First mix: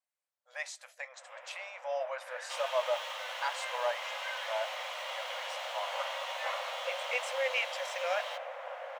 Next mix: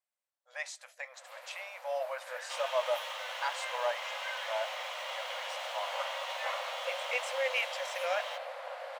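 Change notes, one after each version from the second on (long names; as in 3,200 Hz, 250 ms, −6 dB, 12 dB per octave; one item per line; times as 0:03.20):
first sound: remove Savitzky-Golay smoothing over 25 samples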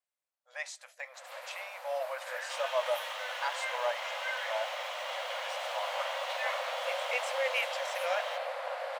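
first sound +5.0 dB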